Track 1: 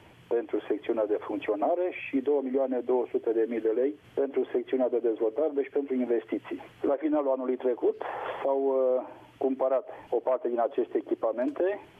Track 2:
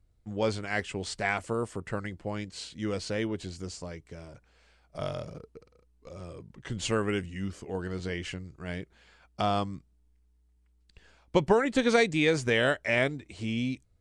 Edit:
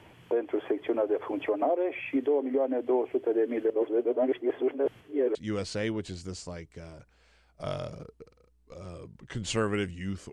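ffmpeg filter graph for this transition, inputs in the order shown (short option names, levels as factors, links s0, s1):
-filter_complex "[0:a]apad=whole_dur=10.32,atrim=end=10.32,asplit=2[s0][s1];[s0]atrim=end=3.702[s2];[s1]atrim=start=3.698:end=5.352,asetpts=PTS-STARTPTS,areverse[s3];[1:a]atrim=start=2.698:end=7.67[s4];[s2][s3]acrossfade=d=0.004:c1=hsin:c2=hsin[s5];[s5][s4]acrossfade=d=0.004:c1=hsin:c2=hsin"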